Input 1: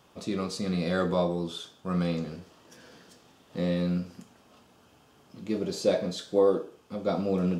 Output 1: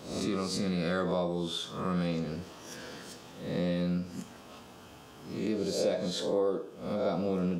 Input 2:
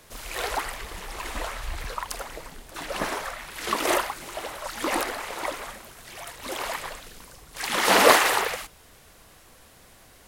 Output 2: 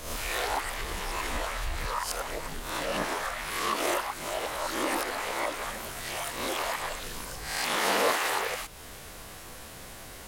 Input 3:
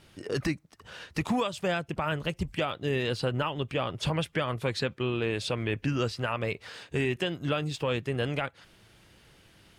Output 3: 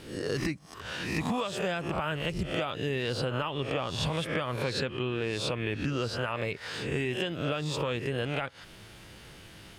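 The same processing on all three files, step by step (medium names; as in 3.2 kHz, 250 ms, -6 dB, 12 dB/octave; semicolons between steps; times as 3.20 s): reverse spectral sustain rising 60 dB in 0.51 s; compression 2.5:1, threshold -39 dBFS; trim +6.5 dB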